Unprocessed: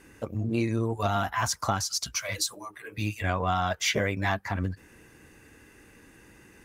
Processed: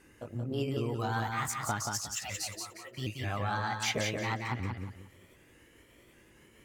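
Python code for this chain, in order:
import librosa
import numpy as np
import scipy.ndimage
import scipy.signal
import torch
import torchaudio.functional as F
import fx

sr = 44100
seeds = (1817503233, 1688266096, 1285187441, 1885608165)

p1 = fx.pitch_ramps(x, sr, semitones=4.0, every_ms=766)
p2 = p1 + fx.echo_feedback(p1, sr, ms=179, feedback_pct=28, wet_db=-4.0, dry=0)
y = F.gain(torch.from_numpy(p2), -6.0).numpy()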